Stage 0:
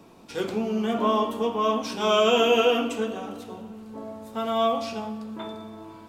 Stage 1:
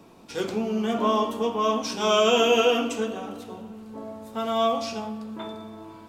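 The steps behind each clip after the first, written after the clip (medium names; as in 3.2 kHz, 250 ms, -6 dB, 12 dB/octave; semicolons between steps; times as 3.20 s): dynamic bell 6 kHz, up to +6 dB, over -50 dBFS, Q 1.6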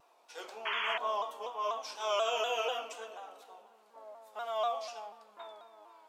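painted sound noise, 0.65–0.98 s, 880–3400 Hz -23 dBFS; ladder high-pass 560 Hz, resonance 35%; vibrato with a chosen wave saw down 4.1 Hz, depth 100 cents; trim -4.5 dB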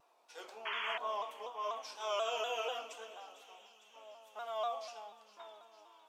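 feedback echo behind a high-pass 453 ms, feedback 74%, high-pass 2.8 kHz, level -15 dB; trim -4.5 dB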